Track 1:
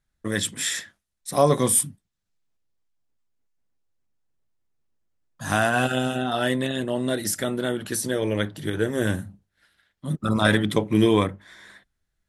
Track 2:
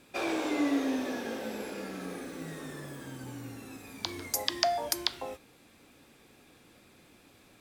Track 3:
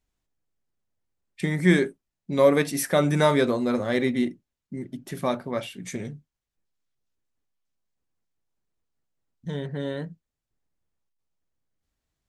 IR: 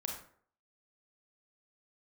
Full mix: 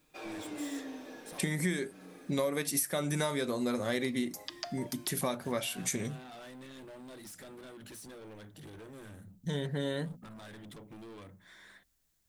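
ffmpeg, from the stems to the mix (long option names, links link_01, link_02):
-filter_complex "[0:a]bandreject=frequency=60:width_type=h:width=6,bandreject=frequency=120:width_type=h:width=6,bandreject=frequency=180:width_type=h:width=6,bandreject=frequency=240:width_type=h:width=6,acompressor=threshold=-30dB:ratio=6,asoftclip=type=tanh:threshold=-38.5dB,volume=-7.5dB[link_01];[1:a]aecho=1:1:6.5:0.47,volume=-13dB[link_02];[2:a]aemphasis=mode=production:type=75kf,volume=-2dB,asplit=2[link_03][link_04];[link_04]apad=whole_len=541791[link_05];[link_01][link_05]sidechaincompress=threshold=-31dB:ratio=8:attack=12:release=264[link_06];[link_06][link_02][link_03]amix=inputs=3:normalize=0,acompressor=threshold=-28dB:ratio=12"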